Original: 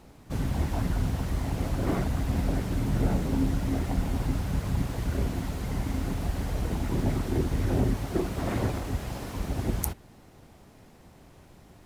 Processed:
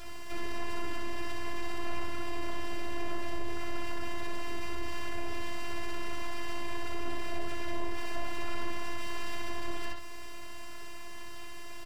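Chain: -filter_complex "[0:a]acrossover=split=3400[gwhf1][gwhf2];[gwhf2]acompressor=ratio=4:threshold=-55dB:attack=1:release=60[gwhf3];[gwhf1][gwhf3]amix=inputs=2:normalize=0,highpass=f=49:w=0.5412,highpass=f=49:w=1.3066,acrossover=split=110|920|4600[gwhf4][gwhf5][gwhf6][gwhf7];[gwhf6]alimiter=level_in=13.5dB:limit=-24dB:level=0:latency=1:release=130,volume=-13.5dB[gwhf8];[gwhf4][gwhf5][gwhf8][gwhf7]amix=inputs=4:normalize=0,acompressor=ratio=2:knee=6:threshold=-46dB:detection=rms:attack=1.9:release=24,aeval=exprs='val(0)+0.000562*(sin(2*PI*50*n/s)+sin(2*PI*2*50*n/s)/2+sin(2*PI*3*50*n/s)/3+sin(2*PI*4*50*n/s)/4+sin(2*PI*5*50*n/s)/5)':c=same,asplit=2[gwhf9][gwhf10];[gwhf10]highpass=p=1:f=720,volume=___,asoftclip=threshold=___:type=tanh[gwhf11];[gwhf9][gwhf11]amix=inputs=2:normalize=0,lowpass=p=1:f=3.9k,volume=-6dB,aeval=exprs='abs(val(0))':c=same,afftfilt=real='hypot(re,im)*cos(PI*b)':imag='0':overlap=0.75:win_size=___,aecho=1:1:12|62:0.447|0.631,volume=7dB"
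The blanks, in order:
18dB, -29dB, 512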